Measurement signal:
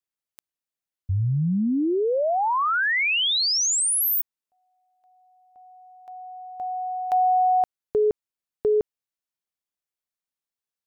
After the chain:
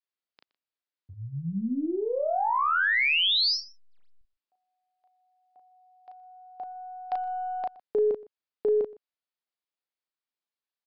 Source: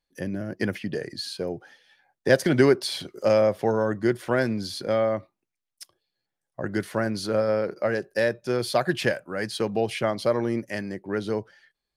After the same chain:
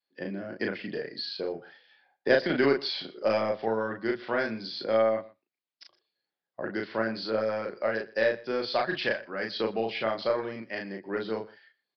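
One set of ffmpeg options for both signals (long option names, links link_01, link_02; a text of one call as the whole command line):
ffmpeg -i in.wav -filter_complex "[0:a]highpass=250,adynamicequalizer=threshold=0.0158:dfrequency=360:dqfactor=0.74:tfrequency=360:tqfactor=0.74:attack=5:release=100:ratio=0.375:range=3.5:mode=cutabove:tftype=bell,aeval=exprs='0.501*(cos(1*acos(clip(val(0)/0.501,-1,1)))-cos(1*PI/2))+0.00282*(cos(8*acos(clip(val(0)/0.501,-1,1)))-cos(8*PI/2))':channel_layout=same,asplit=2[link_01][link_02];[link_02]adelay=36,volume=-3dB[link_03];[link_01][link_03]amix=inputs=2:normalize=0,asplit=2[link_04][link_05];[link_05]aecho=0:1:121:0.0891[link_06];[link_04][link_06]amix=inputs=2:normalize=0,aresample=11025,aresample=44100,volume=-3dB" out.wav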